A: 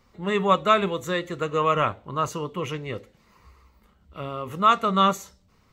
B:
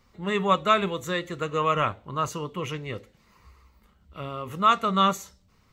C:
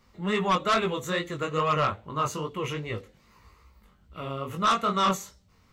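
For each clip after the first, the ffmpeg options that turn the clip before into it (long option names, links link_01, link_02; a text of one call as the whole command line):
ffmpeg -i in.wav -af "equalizer=frequency=500:width=0.47:gain=-3" out.wav
ffmpeg -i in.wav -af "flanger=delay=17.5:depth=5.1:speed=2.4,aeval=exprs='0.355*(cos(1*acos(clip(val(0)/0.355,-1,1)))-cos(1*PI/2))+0.158*(cos(5*acos(clip(val(0)/0.355,-1,1)))-cos(5*PI/2))':channel_layout=same,volume=-6.5dB" out.wav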